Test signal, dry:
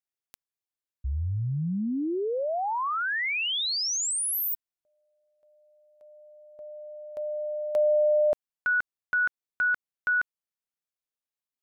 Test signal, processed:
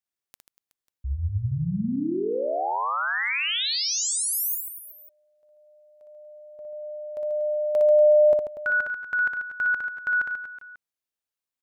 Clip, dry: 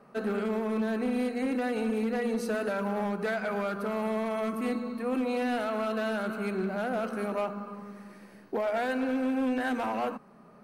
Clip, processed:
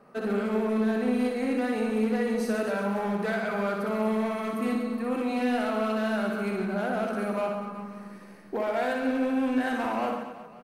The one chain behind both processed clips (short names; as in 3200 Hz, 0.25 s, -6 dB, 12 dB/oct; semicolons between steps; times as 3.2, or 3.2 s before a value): reverse bouncing-ball echo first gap 60 ms, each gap 1.3×, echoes 5